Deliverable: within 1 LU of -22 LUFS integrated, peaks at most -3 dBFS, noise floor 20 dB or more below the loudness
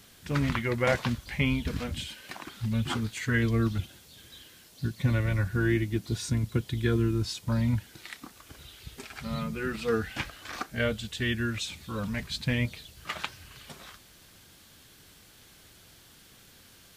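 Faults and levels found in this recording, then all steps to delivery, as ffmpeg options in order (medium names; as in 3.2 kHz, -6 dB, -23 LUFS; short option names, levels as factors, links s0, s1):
loudness -30.0 LUFS; peak level -12.0 dBFS; loudness target -22.0 LUFS
-> -af "volume=2.51"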